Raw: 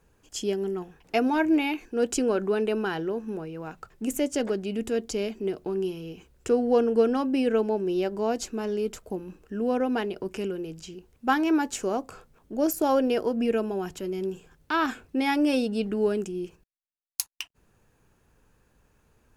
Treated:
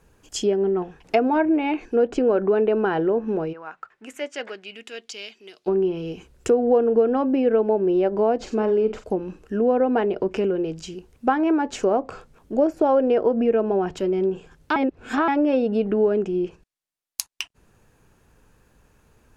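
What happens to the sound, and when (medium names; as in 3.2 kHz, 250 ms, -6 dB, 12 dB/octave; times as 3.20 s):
3.52–5.66 s: band-pass filter 1.2 kHz -> 4.3 kHz, Q 1.4
8.36–9.04 s: flutter echo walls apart 7.9 m, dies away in 0.25 s
14.76–15.28 s: reverse
whole clip: compression 4:1, threshold -27 dBFS; dynamic bell 580 Hz, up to +7 dB, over -43 dBFS, Q 0.94; low-pass that closes with the level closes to 2.2 kHz, closed at -24 dBFS; trim +6 dB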